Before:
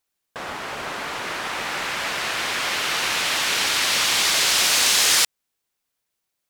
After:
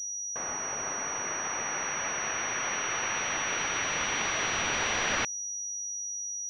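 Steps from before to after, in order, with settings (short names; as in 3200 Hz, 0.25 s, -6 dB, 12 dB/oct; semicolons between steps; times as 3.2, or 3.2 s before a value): pulse-width modulation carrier 5800 Hz; gain -6 dB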